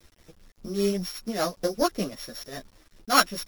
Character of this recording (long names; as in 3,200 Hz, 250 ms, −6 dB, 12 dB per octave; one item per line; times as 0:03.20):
a buzz of ramps at a fixed pitch in blocks of 8 samples
tremolo triangle 5.1 Hz, depth 70%
a quantiser's noise floor 10 bits, dither none
a shimmering, thickened sound